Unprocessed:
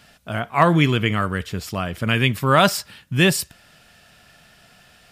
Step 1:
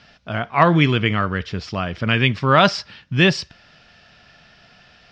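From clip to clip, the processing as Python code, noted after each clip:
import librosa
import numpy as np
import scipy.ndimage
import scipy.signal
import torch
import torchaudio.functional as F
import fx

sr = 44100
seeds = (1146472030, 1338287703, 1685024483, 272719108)

y = scipy.signal.sosfilt(scipy.signal.cheby1(4, 1.0, 5500.0, 'lowpass', fs=sr, output='sos'), x)
y = F.gain(torch.from_numpy(y), 2.0).numpy()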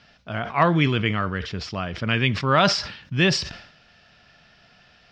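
y = fx.sustainer(x, sr, db_per_s=84.0)
y = F.gain(torch.from_numpy(y), -4.5).numpy()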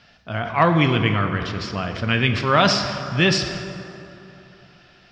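y = fx.rev_plate(x, sr, seeds[0], rt60_s=3.0, hf_ratio=0.5, predelay_ms=0, drr_db=6.0)
y = F.gain(torch.from_numpy(y), 1.5).numpy()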